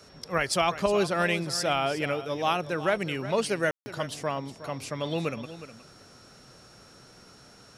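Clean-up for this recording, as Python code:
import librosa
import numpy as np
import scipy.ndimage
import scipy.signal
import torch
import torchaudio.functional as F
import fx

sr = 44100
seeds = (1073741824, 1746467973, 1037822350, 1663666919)

y = fx.notch(x, sr, hz=5500.0, q=30.0)
y = fx.fix_ambience(y, sr, seeds[0], print_start_s=7.24, print_end_s=7.74, start_s=3.71, end_s=3.86)
y = fx.fix_echo_inverse(y, sr, delay_ms=364, level_db=-13.5)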